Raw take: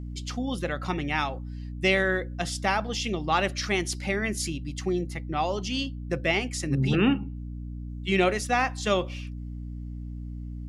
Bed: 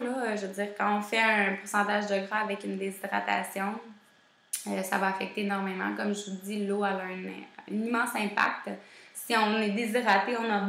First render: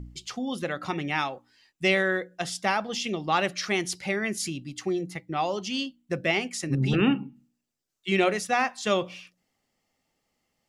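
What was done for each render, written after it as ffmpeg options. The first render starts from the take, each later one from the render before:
-af "bandreject=f=60:t=h:w=4,bandreject=f=120:t=h:w=4,bandreject=f=180:t=h:w=4,bandreject=f=240:t=h:w=4,bandreject=f=300:t=h:w=4"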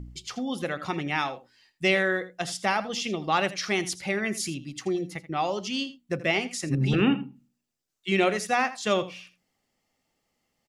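-af "aecho=1:1:82:0.168"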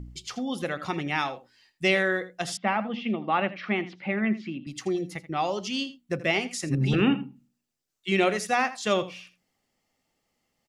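-filter_complex "[0:a]asettb=1/sr,asplit=3[s0][s1][s2];[s0]atrim=end=2.574[s3];[s1]atrim=start=2.57:end=4.67,asetpts=PTS-STARTPTS,afade=t=in:d=0.004:c=qsin,afade=t=out:st=2.096:d=0.004:c=qsin,highpass=200,equalizer=f=220:t=q:w=4:g=10,equalizer=f=420:t=q:w=4:g=-4,equalizer=f=1600:t=q:w=4:g=-3,lowpass=f=2700:w=0.5412,lowpass=f=2700:w=1.3066[s4];[s2]atrim=start=4.666[s5];[s3][s4]acrossfade=d=0.004:c1=hsin:c2=qsin[s6];[s6][s5]acrossfade=d=0.004:c1=qsin:c2=hsin"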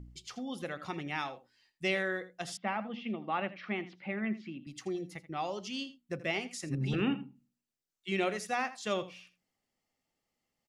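-af "volume=0.376"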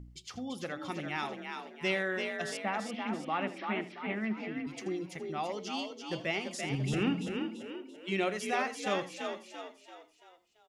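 -filter_complex "[0:a]asplit=6[s0][s1][s2][s3][s4][s5];[s1]adelay=338,afreqshift=43,volume=0.531[s6];[s2]adelay=676,afreqshift=86,volume=0.234[s7];[s3]adelay=1014,afreqshift=129,volume=0.102[s8];[s4]adelay=1352,afreqshift=172,volume=0.0452[s9];[s5]adelay=1690,afreqshift=215,volume=0.02[s10];[s0][s6][s7][s8][s9][s10]amix=inputs=6:normalize=0"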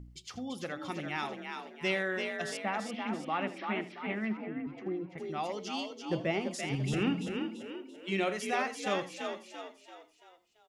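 -filter_complex "[0:a]asettb=1/sr,asplit=3[s0][s1][s2];[s0]atrim=end=4.374[s3];[s1]atrim=start=4.37:end=5.18,asetpts=PTS-STARTPTS,afade=t=in:d=0.004:c=qsin,afade=t=out:st=0.806:d=0.004:c=qsin,lowpass=1600[s4];[s2]atrim=start=5.176[s5];[s3][s4]acrossfade=d=0.004:c1=hsin:c2=qsin[s6];[s6][s5]acrossfade=d=0.004:c1=qsin:c2=hsin,asettb=1/sr,asplit=3[s7][s8][s9];[s7]atrim=end=6.054[s10];[s8]atrim=start=6.05:end=6.54,asetpts=PTS-STARTPTS,afade=t=in:d=0.004:c=qsin,afade=t=out:st=0.486:d=0.004:c=qsin,tiltshelf=f=1300:g=6[s11];[s9]atrim=start=6.536[s12];[s10][s11]acrossfade=d=0.004:c1=hsin:c2=qsin[s13];[s13][s12]acrossfade=d=0.004:c1=qsin:c2=hsin,asettb=1/sr,asplit=3[s14][s15][s16];[s14]atrim=end=7.874[s17];[s15]atrim=start=7.87:end=8.45,asetpts=PTS-STARTPTS,afade=t=in:d=0.004:c=qsin,afade=t=out:st=0.576:d=0.004:c=qsin,asplit=2[s18][s19];[s19]adelay=46,volume=0.224[s20];[s18][s20]amix=inputs=2:normalize=0,atrim=end_sample=25578[s21];[s16]atrim=start=8.446[s22];[s17][s21]acrossfade=d=0.004:c1=hsin:c2=qsin[s23];[s23][s22]acrossfade=d=0.004:c1=qsin:c2=hsin"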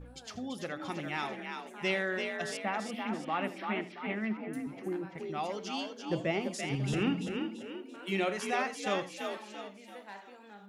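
-filter_complex "[1:a]volume=0.0631[s0];[0:a][s0]amix=inputs=2:normalize=0"

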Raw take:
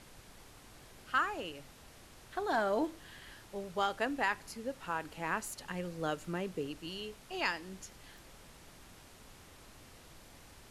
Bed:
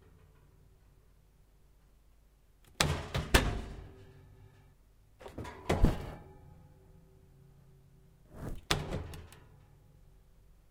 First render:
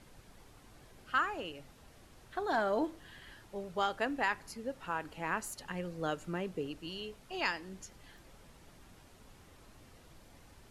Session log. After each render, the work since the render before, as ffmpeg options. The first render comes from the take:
-af "afftdn=nr=6:nf=-57"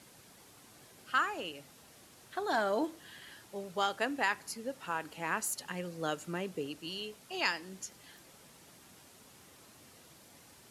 -af "highpass=130,highshelf=f=4000:g=9.5"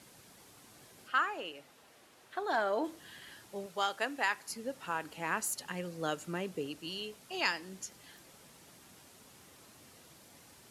-filter_complex "[0:a]asplit=3[s0][s1][s2];[s0]afade=t=out:st=1.07:d=0.02[s3];[s1]bass=f=250:g=-10,treble=f=4000:g=-7,afade=t=in:st=1.07:d=0.02,afade=t=out:st=2.84:d=0.02[s4];[s2]afade=t=in:st=2.84:d=0.02[s5];[s3][s4][s5]amix=inputs=3:normalize=0,asettb=1/sr,asplit=3[s6][s7][s8];[s6]atrim=end=3.664[s9];[s7]atrim=start=3.66:end=4.5,asetpts=PTS-STARTPTS,afade=t=in:d=0.004:c=qsin,afade=t=out:st=0.836:d=0.004:c=qsin,lowshelf=f=290:g=-10.5[s10];[s8]atrim=start=4.496[s11];[s9][s10]acrossfade=d=0.004:c1=hsin:c2=qsin[s12];[s12][s11]acrossfade=d=0.004:c1=qsin:c2=hsin"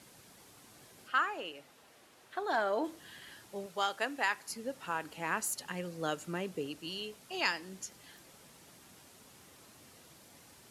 -af anull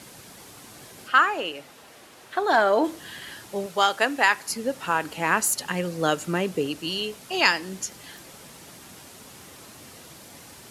-af "volume=3.98"

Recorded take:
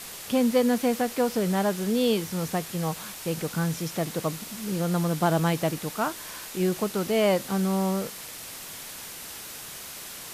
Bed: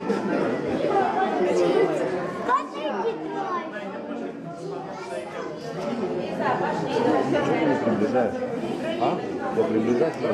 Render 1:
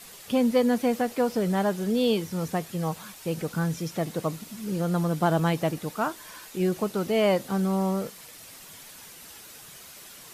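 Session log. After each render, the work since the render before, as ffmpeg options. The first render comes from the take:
-af "afftdn=nr=8:nf=-40"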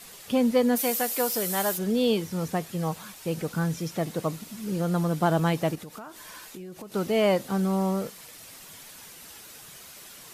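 -filter_complex "[0:a]asplit=3[s0][s1][s2];[s0]afade=t=out:st=0.75:d=0.02[s3];[s1]aemphasis=mode=production:type=riaa,afade=t=in:st=0.75:d=0.02,afade=t=out:st=1.77:d=0.02[s4];[s2]afade=t=in:st=1.77:d=0.02[s5];[s3][s4][s5]amix=inputs=3:normalize=0,asettb=1/sr,asplit=3[s6][s7][s8];[s6]atrim=end=5.754[s9];[s7]atrim=start=5.75:end=6.92,asetpts=PTS-STARTPTS,afade=t=in:d=0.004:c=qsin,afade=t=out:st=1.166:d=0.004:c=qsin,acompressor=threshold=0.0141:ratio=12:attack=3.2:release=140:knee=1:detection=peak[s10];[s8]atrim=start=6.916[s11];[s9][s10]acrossfade=d=0.004:c1=hsin:c2=qsin[s12];[s12][s11]acrossfade=d=0.004:c1=qsin:c2=hsin"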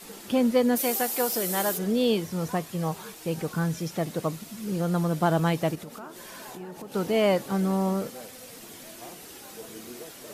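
-filter_complex "[1:a]volume=0.0841[s0];[0:a][s0]amix=inputs=2:normalize=0"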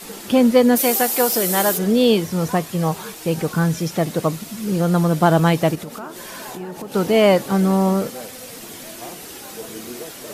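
-af "volume=2.66"

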